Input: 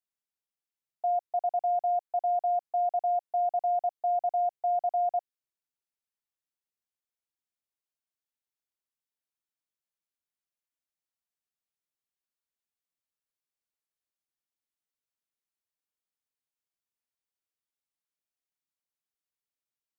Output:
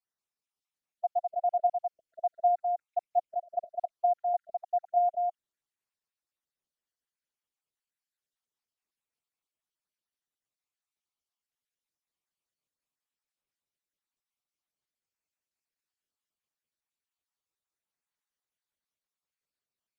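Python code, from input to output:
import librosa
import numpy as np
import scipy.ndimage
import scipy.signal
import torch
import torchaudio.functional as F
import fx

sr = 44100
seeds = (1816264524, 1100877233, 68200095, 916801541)

p1 = fx.spec_dropout(x, sr, seeds[0], share_pct=71)
p2 = p1 + fx.echo_single(p1, sr, ms=205, db=-3.5, dry=0)
p3 = np.interp(np.arange(len(p2)), np.arange(len(p2))[::2], p2[::2])
y = p3 * librosa.db_to_amplitude(2.0)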